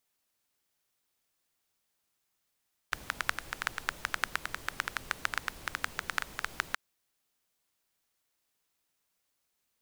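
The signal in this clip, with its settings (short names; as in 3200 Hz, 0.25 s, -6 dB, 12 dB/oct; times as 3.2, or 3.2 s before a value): rain from filtered ticks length 3.83 s, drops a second 9.3, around 1500 Hz, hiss -11 dB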